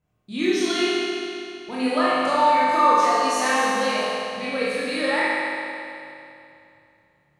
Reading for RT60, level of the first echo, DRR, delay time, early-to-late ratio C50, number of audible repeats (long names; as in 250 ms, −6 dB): 2.7 s, no echo audible, −9.5 dB, no echo audible, −5.0 dB, no echo audible